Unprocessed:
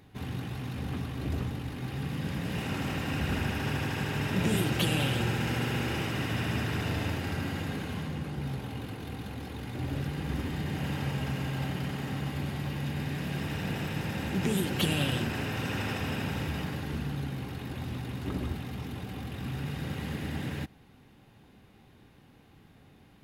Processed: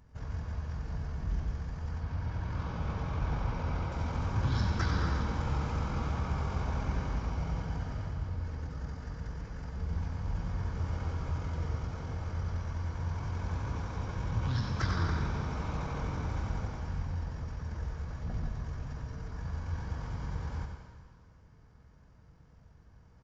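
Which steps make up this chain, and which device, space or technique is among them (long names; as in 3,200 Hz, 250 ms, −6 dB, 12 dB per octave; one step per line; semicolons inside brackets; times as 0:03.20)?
monster voice (pitch shifter −9 semitones; formants moved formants −4.5 semitones; low-shelf EQ 110 Hz +5.5 dB; single-tap delay 92 ms −9 dB; convolution reverb RT60 1.8 s, pre-delay 67 ms, DRR 5.5 dB)
0:01.99–0:03.92: low-pass filter 5,200 Hz 12 dB per octave
level −5 dB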